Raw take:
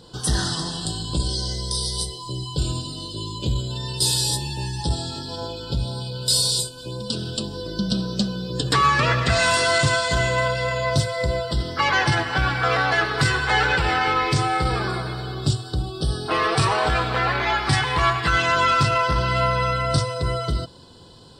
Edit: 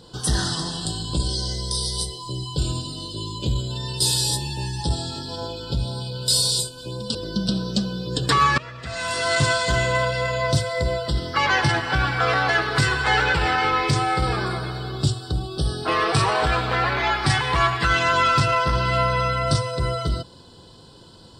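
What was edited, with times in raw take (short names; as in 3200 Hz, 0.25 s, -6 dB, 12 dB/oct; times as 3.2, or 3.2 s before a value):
7.15–7.58 cut
9.01–9.86 fade in quadratic, from -19 dB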